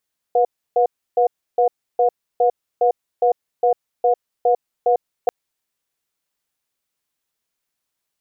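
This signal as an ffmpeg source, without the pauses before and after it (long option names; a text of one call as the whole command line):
ffmpeg -f lavfi -i "aevalsrc='0.178*(sin(2*PI*489*t)+sin(2*PI*720*t))*clip(min(mod(t,0.41),0.1-mod(t,0.41))/0.005,0,1)':duration=4.94:sample_rate=44100" out.wav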